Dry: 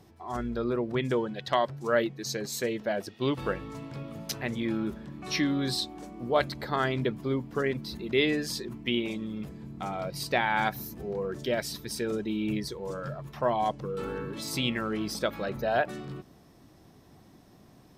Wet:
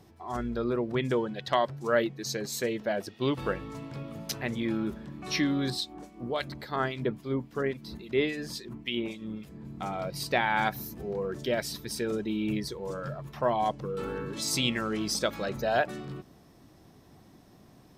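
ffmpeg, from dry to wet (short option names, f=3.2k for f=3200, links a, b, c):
-filter_complex "[0:a]asettb=1/sr,asplit=3[a][b][c];[a]atrim=end=5.704[d];[b]atrim=start=5.7:end=9.65,asetpts=PTS-STARTPTS,afade=t=in:d=0.004:c=qsin,afade=t=out:st=3.946:d=0.004:c=qsin,acrossover=split=1900[e][f];[e]aeval=exprs='val(0)*(1-0.7/2+0.7/2*cos(2*PI*3.6*n/s))':c=same[g];[f]aeval=exprs='val(0)*(1-0.7/2-0.7/2*cos(2*PI*3.6*n/s))':c=same[h];[g][h]amix=inputs=2:normalize=0[i];[c]atrim=start=9.646[j];[d][i]acrossfade=d=0.004:c1=hsin:c2=qsin[k];[k][j]acrossfade=d=0.004:c1=qsin:c2=hsin,asettb=1/sr,asplit=3[l][m][n];[l]atrim=end=14.264[o];[m]atrim=start=14.26:end=15.87,asetpts=PTS-STARTPTS,afade=t=in:d=0.004:c=qsin,afade=t=out:st=1.606:d=0.004:c=qsin,equalizer=f=6.8k:t=o:w=1.3:g=8.5[p];[n]atrim=start=15.866[q];[o][p]acrossfade=d=0.004:c1=hsin:c2=qsin[r];[r][q]acrossfade=d=0.004:c1=qsin:c2=hsin"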